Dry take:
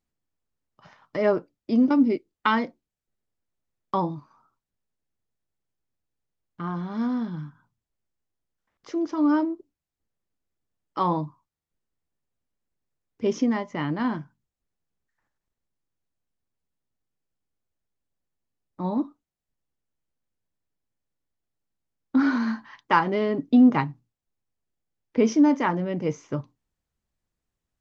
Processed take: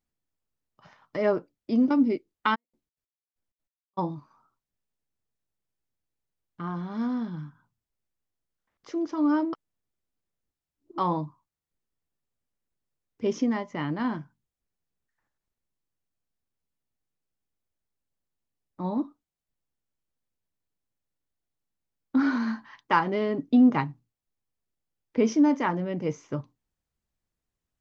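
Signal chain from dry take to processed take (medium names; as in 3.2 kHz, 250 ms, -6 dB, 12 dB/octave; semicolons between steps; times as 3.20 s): 2.54–3.97 s: trance gate "...xx.x." 192 bpm -60 dB; 9.53–10.98 s: reverse; trim -2.5 dB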